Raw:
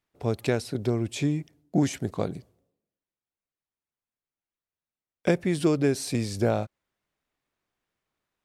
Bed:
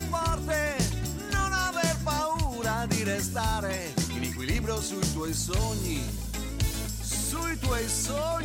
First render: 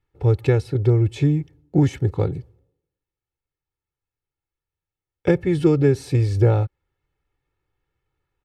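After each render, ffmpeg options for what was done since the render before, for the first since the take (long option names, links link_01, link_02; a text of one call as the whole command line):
ffmpeg -i in.wav -af "bass=frequency=250:gain=12,treble=frequency=4000:gain=-11,aecho=1:1:2.3:0.91" out.wav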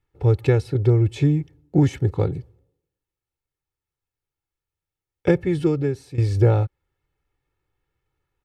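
ffmpeg -i in.wav -filter_complex "[0:a]asplit=2[link_01][link_02];[link_01]atrim=end=6.18,asetpts=PTS-STARTPTS,afade=type=out:start_time=5.33:duration=0.85:silence=0.16788[link_03];[link_02]atrim=start=6.18,asetpts=PTS-STARTPTS,afade=type=in:duration=0.004:curve=hsin:silence=0.16788[link_04];[link_03][link_04]concat=n=2:v=0:a=1" out.wav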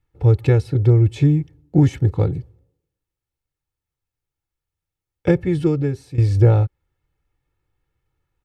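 ffmpeg -i in.wav -af "lowshelf=frequency=250:gain=5,bandreject=frequency=400:width=12" out.wav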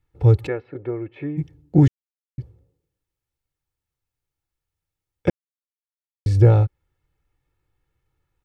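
ffmpeg -i in.wav -filter_complex "[0:a]asplit=3[link_01][link_02][link_03];[link_01]afade=type=out:start_time=0.46:duration=0.02[link_04];[link_02]highpass=440,equalizer=frequency=450:width_type=q:width=4:gain=-4,equalizer=frequency=840:width_type=q:width=4:gain=-7,equalizer=frequency=1400:width_type=q:width=4:gain=-3,lowpass=frequency=2100:width=0.5412,lowpass=frequency=2100:width=1.3066,afade=type=in:start_time=0.46:duration=0.02,afade=type=out:start_time=1.37:duration=0.02[link_05];[link_03]afade=type=in:start_time=1.37:duration=0.02[link_06];[link_04][link_05][link_06]amix=inputs=3:normalize=0,asplit=5[link_07][link_08][link_09][link_10][link_11];[link_07]atrim=end=1.88,asetpts=PTS-STARTPTS,afade=type=out:start_time=1.876:duration=0.004:curve=hsin[link_12];[link_08]atrim=start=1.88:end=2.38,asetpts=PTS-STARTPTS,volume=0[link_13];[link_09]atrim=start=2.38:end=5.3,asetpts=PTS-STARTPTS,afade=type=in:duration=0.004:curve=hsin,afade=type=out:start_time=2.916:duration=0.004:curve=hsin[link_14];[link_10]atrim=start=5.3:end=6.26,asetpts=PTS-STARTPTS,volume=0[link_15];[link_11]atrim=start=6.26,asetpts=PTS-STARTPTS,afade=type=in:duration=0.004:curve=hsin[link_16];[link_12][link_13][link_14][link_15][link_16]concat=n=5:v=0:a=1" out.wav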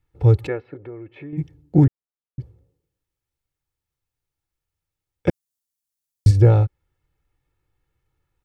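ffmpeg -i in.wav -filter_complex "[0:a]asettb=1/sr,asplit=3[link_01][link_02][link_03];[link_01]atrim=end=0.744[link_04];[link_02]atrim=start=0.74:end=1.33,asetpts=PTS-STARTPTS,afade=type=in:duration=0.004:curve=qsin,afade=type=out:start_time=0.586:duration=0.004:curve=qsin,acompressor=threshold=-39dB:ratio=2:attack=3.2:release=140:knee=1:detection=peak[link_05];[link_03]atrim=start=1.326[link_06];[link_04][link_05]acrossfade=duration=0.004:curve1=hsin:curve2=qsin[link_07];[link_07][link_06]acrossfade=duration=0.004:curve1=qsin:curve2=hsin,asettb=1/sr,asplit=3[link_08][link_09][link_10];[link_08]atrim=end=1.844[link_11];[link_09]atrim=start=1.84:end=2.4,asetpts=PTS-STARTPTS,afade=type=in:duration=0.004:curve=qsin,afade=type=out:start_time=0.556:duration=0.004:curve=qsin,lowpass=frequency=1500:width=0.5412,lowpass=frequency=1500:width=1.3066[link_12];[link_10]atrim=start=2.396[link_13];[link_11][link_12]acrossfade=duration=0.004:curve1=hsin:curve2=qsin[link_14];[link_14][link_13]acrossfade=duration=0.004:curve1=qsin:curve2=hsin,asplit=3[link_15][link_16][link_17];[link_15]afade=type=out:start_time=5.29:duration=0.02[link_18];[link_16]bass=frequency=250:gain=9,treble=frequency=4000:gain=13,afade=type=in:start_time=5.29:duration=0.02,afade=type=out:start_time=6.3:duration=0.02[link_19];[link_17]afade=type=in:start_time=6.3:duration=0.02[link_20];[link_18][link_19][link_20]amix=inputs=3:normalize=0" out.wav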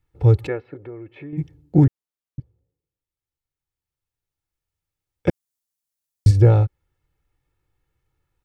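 ffmpeg -i in.wav -filter_complex "[0:a]asplit=2[link_01][link_02];[link_01]atrim=end=2.4,asetpts=PTS-STARTPTS,afade=type=out:start_time=2.396:duration=0.004:curve=hsin:silence=0.177828[link_03];[link_02]atrim=start=2.4,asetpts=PTS-STARTPTS,afade=type=in:duration=2.88:silence=0.177828[link_04];[link_03][link_04]concat=n=2:v=0:a=1" out.wav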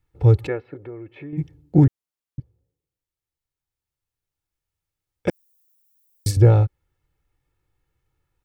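ffmpeg -i in.wav -filter_complex "[0:a]asettb=1/sr,asplit=3[link_01][link_02][link_03];[link_01]atrim=end=5.284[link_04];[link_02]atrim=start=5.28:end=6.37,asetpts=PTS-STARTPTS,afade=type=in:duration=0.004:curve=qsin,afade=type=out:start_time=1.086:duration=0.004:curve=qsin,aemphasis=mode=production:type=bsi[link_05];[link_03]atrim=start=6.366[link_06];[link_04][link_05]acrossfade=duration=0.004:curve1=hsin:curve2=qsin[link_07];[link_07][link_06]acrossfade=duration=0.004:curve1=qsin:curve2=hsin" out.wav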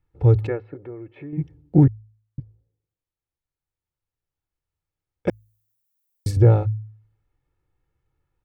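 ffmpeg -i in.wav -af "highshelf=frequency=2700:gain=-10.5,bandreject=frequency=53.84:width_type=h:width=4,bandreject=frequency=107.68:width_type=h:width=4" out.wav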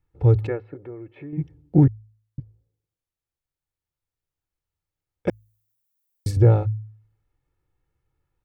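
ffmpeg -i in.wav -af "volume=-1dB" out.wav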